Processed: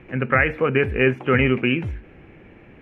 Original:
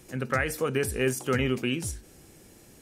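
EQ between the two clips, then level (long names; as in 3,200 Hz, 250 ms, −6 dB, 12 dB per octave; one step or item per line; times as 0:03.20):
high-frequency loss of the air 280 metres
high shelf with overshoot 3,400 Hz −12.5 dB, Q 3
+8.0 dB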